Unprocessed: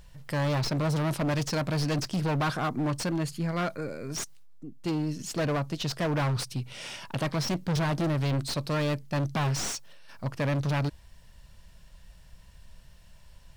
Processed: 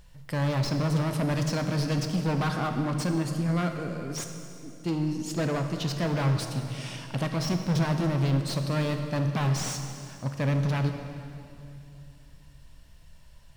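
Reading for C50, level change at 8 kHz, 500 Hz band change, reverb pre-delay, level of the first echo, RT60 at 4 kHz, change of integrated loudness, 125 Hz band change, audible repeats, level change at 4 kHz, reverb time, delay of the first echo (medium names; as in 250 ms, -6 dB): 6.0 dB, -1.0 dB, 0.0 dB, 11 ms, no echo, 2.4 s, +1.5 dB, +2.5 dB, no echo, -1.0 dB, 2.8 s, no echo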